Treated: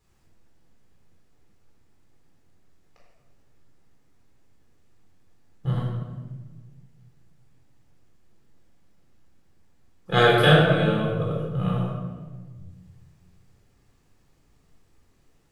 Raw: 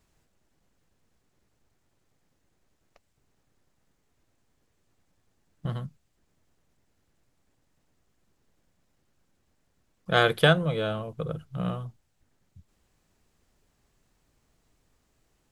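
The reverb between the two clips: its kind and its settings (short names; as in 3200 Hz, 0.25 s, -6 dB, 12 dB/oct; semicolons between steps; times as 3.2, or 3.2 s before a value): shoebox room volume 1200 m³, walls mixed, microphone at 4 m; gain -3.5 dB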